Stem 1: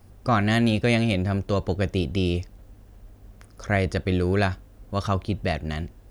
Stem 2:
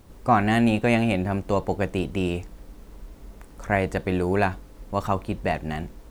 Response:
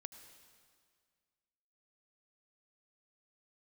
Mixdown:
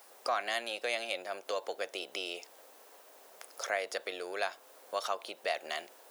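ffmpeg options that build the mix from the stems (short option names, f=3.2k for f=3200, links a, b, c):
-filter_complex "[0:a]acompressor=threshold=-29dB:ratio=6,volume=3dB[a];[1:a]acompressor=threshold=-27dB:ratio=6,alimiter=level_in=9dB:limit=-24dB:level=0:latency=1,volume=-9dB,volume=-5.5dB[b];[a][b]amix=inputs=2:normalize=0,highpass=f=540:w=0.5412,highpass=f=540:w=1.3066,highshelf=f=6.1k:g=6"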